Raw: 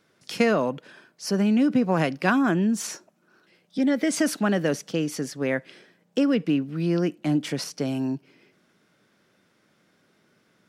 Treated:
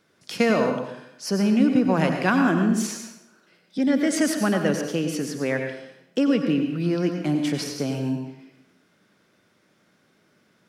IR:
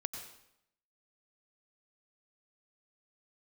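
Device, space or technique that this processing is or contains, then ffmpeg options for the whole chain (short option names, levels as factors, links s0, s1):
bathroom: -filter_complex "[1:a]atrim=start_sample=2205[s0];[0:a][s0]afir=irnorm=-1:irlink=0,volume=1.19"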